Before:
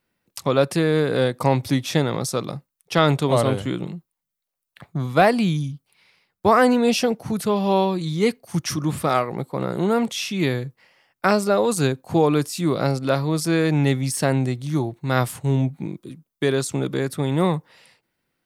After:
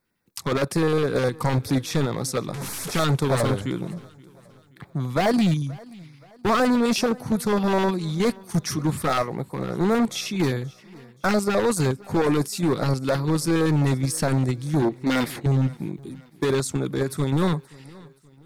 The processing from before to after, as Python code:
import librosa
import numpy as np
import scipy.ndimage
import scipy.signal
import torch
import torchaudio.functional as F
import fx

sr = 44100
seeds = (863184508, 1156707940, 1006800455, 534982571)

p1 = fx.delta_mod(x, sr, bps=64000, step_db=-23.5, at=(2.54, 3.04))
p2 = fx.graphic_eq(p1, sr, hz=(125, 250, 500, 1000, 2000, 4000, 8000), db=(-10, 10, 7, -3, 10, 7, -9), at=(14.82, 15.46))
p3 = fx.level_steps(p2, sr, step_db=22)
p4 = p2 + F.gain(torch.from_numpy(p3), 2.0).numpy()
p5 = np.clip(p4, -10.0 ** (-14.0 / 20.0), 10.0 ** (-14.0 / 20.0))
p6 = fx.filter_lfo_notch(p5, sr, shape='square', hz=9.7, low_hz=610.0, high_hz=2900.0, q=1.6)
p7 = p6 + fx.echo_feedback(p6, sr, ms=526, feedback_pct=44, wet_db=-23.0, dry=0)
y = F.gain(torch.from_numpy(p7), -2.5).numpy()